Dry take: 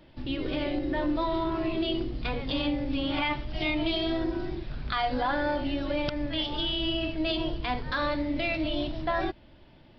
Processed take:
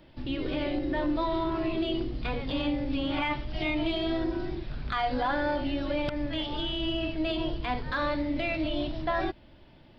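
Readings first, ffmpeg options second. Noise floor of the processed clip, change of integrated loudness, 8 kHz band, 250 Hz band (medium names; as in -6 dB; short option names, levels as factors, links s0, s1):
-54 dBFS, -1.0 dB, no reading, -0.5 dB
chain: -filter_complex "[0:a]asoftclip=type=tanh:threshold=0.188,acrossover=split=3000[s0][s1];[s1]acompressor=threshold=0.00708:ratio=4:attack=1:release=60[s2];[s0][s2]amix=inputs=2:normalize=0"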